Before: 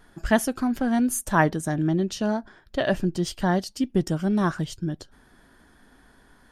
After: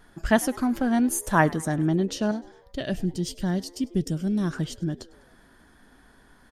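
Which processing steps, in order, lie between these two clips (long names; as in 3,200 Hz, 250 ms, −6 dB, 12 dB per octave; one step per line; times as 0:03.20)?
0:02.31–0:04.53: parametric band 990 Hz −14 dB 2.1 octaves
echo with shifted repeats 101 ms, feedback 55%, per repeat +86 Hz, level −22.5 dB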